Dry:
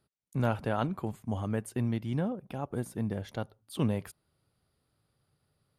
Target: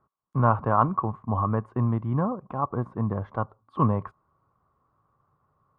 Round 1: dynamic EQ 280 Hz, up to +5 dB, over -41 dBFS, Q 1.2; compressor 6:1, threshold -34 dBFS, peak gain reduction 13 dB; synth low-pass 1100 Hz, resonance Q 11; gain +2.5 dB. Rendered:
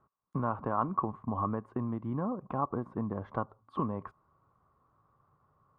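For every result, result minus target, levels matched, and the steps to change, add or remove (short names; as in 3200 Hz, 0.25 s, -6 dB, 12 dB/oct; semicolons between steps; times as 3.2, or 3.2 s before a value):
compressor: peak gain reduction +13 dB; 125 Hz band -3.5 dB
remove: compressor 6:1, threshold -34 dBFS, peak gain reduction 13 dB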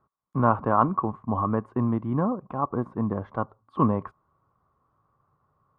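125 Hz band -3.5 dB
change: dynamic EQ 110 Hz, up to +5 dB, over -41 dBFS, Q 1.2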